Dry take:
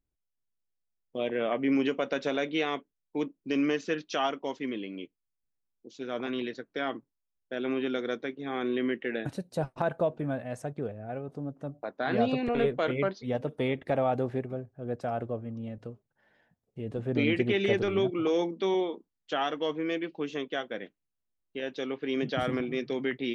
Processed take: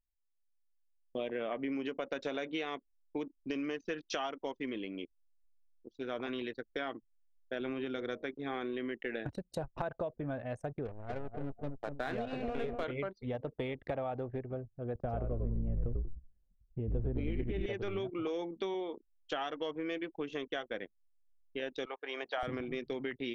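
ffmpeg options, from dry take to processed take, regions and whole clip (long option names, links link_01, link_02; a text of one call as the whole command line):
ffmpeg -i in.wav -filter_complex "[0:a]asettb=1/sr,asplit=3[link_01][link_02][link_03];[link_01]atrim=end=7.604[link_04];[link_02]atrim=start=7.6:end=8.24,asetpts=PTS-STARTPTS,afade=type=in:duration=0.004:curve=qsin,afade=type=out:start_time=0.636:duration=0.004:curve=qsin,equalizer=frequency=79:width=0.75:gain=9,bandreject=frequency=56.66:width_type=h:width=4,bandreject=frequency=113.32:width_type=h:width=4,bandreject=frequency=169.98:width_type=h:width=4,bandreject=frequency=226.64:width_type=h:width=4,bandreject=frequency=283.3:width_type=h:width=4,bandreject=frequency=339.96:width_type=h:width=4,bandreject=frequency=396.62:width_type=h:width=4,bandreject=frequency=453.28:width_type=h:width=4,bandreject=frequency=509.94:width_type=h:width=4,bandreject=frequency=566.6:width_type=h:width=4,bandreject=frequency=623.26:width_type=h:width=4,bandreject=frequency=679.92:width_type=h:width=4[link_05];[link_03]atrim=start=8.236[link_06];[link_04][link_05]acrossfade=duration=0.004:curve1=hsin:curve2=qsin[link_07];[link_07][link_06]acrossfade=duration=0.004:curve1=qsin:curve2=hsin,asettb=1/sr,asplit=3[link_08][link_09][link_10];[link_08]atrim=end=10.854[link_11];[link_09]atrim=start=10.85:end=12.84,asetpts=PTS-STARTPTS,afade=type=in:duration=0.004:curve=qsin,afade=type=out:start_time=1.986:duration=0.004:curve=qsin,aeval=exprs='sgn(val(0))*max(abs(val(0))-0.00631,0)':channel_layout=same,asplit=2[link_12][link_13];[link_13]adelay=245,lowpass=frequency=1300:poles=1,volume=-6dB,asplit=2[link_14][link_15];[link_15]adelay=245,lowpass=frequency=1300:poles=1,volume=0.5,asplit=2[link_16][link_17];[link_17]adelay=245,lowpass=frequency=1300:poles=1,volume=0.5,asplit=2[link_18][link_19];[link_19]adelay=245,lowpass=frequency=1300:poles=1,volume=0.5,asplit=2[link_20][link_21];[link_21]adelay=245,lowpass=frequency=1300:poles=1,volume=0.5,asplit=2[link_22][link_23];[link_23]adelay=245,lowpass=frequency=1300:poles=1,volume=0.5[link_24];[link_12][link_14][link_16][link_18][link_20][link_22][link_24]amix=inputs=7:normalize=0,atrim=end_sample=87759[link_25];[link_10]atrim=start=12.836[link_26];[link_11][link_25]acrossfade=duration=0.004:curve1=hsin:curve2=qsin[link_27];[link_27][link_26]acrossfade=duration=0.004:curve1=qsin:curve2=hsin,asettb=1/sr,asplit=3[link_28][link_29][link_30];[link_28]atrim=end=14.954[link_31];[link_29]atrim=start=14.95:end=17.66,asetpts=PTS-STARTPTS,afade=type=in:duration=0.004:curve=qsin,afade=type=out:start_time=2.706:duration=0.004:curve=qsin,tiltshelf=frequency=660:gain=6.5,asplit=6[link_32][link_33][link_34][link_35][link_36][link_37];[link_33]adelay=93,afreqshift=-62,volume=-5dB[link_38];[link_34]adelay=186,afreqshift=-124,volume=-13.2dB[link_39];[link_35]adelay=279,afreqshift=-186,volume=-21.4dB[link_40];[link_36]adelay=372,afreqshift=-248,volume=-29.5dB[link_41];[link_37]adelay=465,afreqshift=-310,volume=-37.7dB[link_42];[link_32][link_38][link_39][link_40][link_41][link_42]amix=inputs=6:normalize=0,atrim=end_sample=119511[link_43];[link_30]atrim=start=17.656[link_44];[link_31][link_43]acrossfade=duration=0.004:curve1=hsin:curve2=qsin[link_45];[link_45][link_44]acrossfade=duration=0.004:curve1=qsin:curve2=hsin,asettb=1/sr,asplit=3[link_46][link_47][link_48];[link_46]atrim=end=21.854[link_49];[link_47]atrim=start=21.85:end=22.43,asetpts=PTS-STARTPTS,afade=type=in:duration=0.004:curve=qsin,afade=type=out:start_time=0.576:duration=0.004:curve=qsin,highpass=frequency=800:width_type=q:width=1.9,highshelf=frequency=2400:gain=-6.5[link_50];[link_48]atrim=start=22.426[link_51];[link_49][link_50]acrossfade=duration=0.004:curve1=hsin:curve2=qsin[link_52];[link_52][link_51]acrossfade=duration=0.004:curve1=qsin:curve2=hsin,acompressor=threshold=-32dB:ratio=10,asubboost=boost=6:cutoff=65,anlmdn=0.0251" out.wav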